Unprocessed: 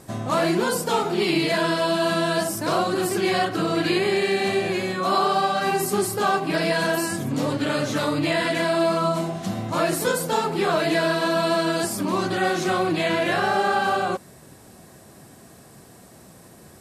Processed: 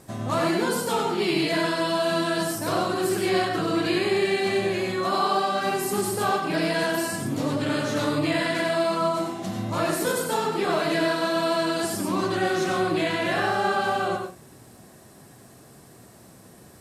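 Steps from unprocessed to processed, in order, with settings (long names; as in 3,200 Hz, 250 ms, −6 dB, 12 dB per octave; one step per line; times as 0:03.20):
surface crackle 140 per second −51 dBFS
on a send: convolution reverb RT60 0.30 s, pre-delay 86 ms, DRR 4 dB
on the sum: level −3.5 dB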